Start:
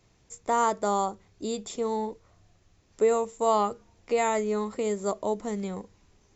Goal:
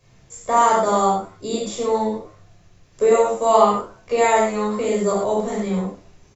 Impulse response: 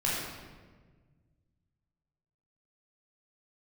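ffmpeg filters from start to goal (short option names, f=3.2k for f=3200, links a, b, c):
-filter_complex "[0:a]asplit=4[a][b][c][d];[b]adelay=84,afreqshift=96,volume=-19.5dB[e];[c]adelay=168,afreqshift=192,volume=-28.4dB[f];[d]adelay=252,afreqshift=288,volume=-37.2dB[g];[a][e][f][g]amix=inputs=4:normalize=0[h];[1:a]atrim=start_sample=2205,atrim=end_sample=6174[i];[h][i]afir=irnorm=-1:irlink=0,volume=1.5dB"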